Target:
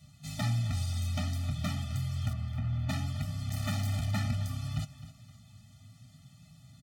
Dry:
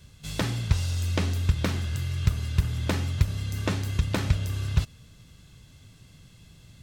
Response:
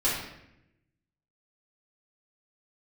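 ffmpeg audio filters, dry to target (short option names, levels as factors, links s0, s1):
-filter_complex "[0:a]volume=14.1,asoftclip=hard,volume=0.0708,highpass=93,flanger=delay=6.4:depth=3.4:regen=56:speed=0.62:shape=triangular,asettb=1/sr,asplit=3[s0][s1][s2];[s0]atrim=end=2.334[s3];[s1]atrim=start=2.33:end=2.89,asetpts=PTS-STARTPTS,afade=t=in:d=0.004:c=qsin,afade=t=out:st=0.556:d=0.004:c=qsin,lowpass=2400[s4];[s2]atrim=start=2.886[s5];[s3][s4]acrossfade=d=0.004:c1=hsin:c2=qsin[s6];[s6][s5]acrossfade=d=0.004:c1=qsin:c2=hsin,aecho=1:1:261|522|783|1044:0.178|0.0711|0.0285|0.0114,asplit=3[s7][s8][s9];[s7]afade=t=out:st=3.48:d=0.02[s10];[s8]acrusher=bits=5:mix=0:aa=0.5,afade=t=in:st=3.48:d=0.02,afade=t=out:st=4.1:d=0.02[s11];[s9]afade=t=in:st=4.1:d=0.02[s12];[s10][s11][s12]amix=inputs=3:normalize=0,afftfilt=real='re*eq(mod(floor(b*sr/1024/290),2),0)':imag='im*eq(mod(floor(b*sr/1024/290),2),0)':win_size=1024:overlap=0.75,volume=1.41"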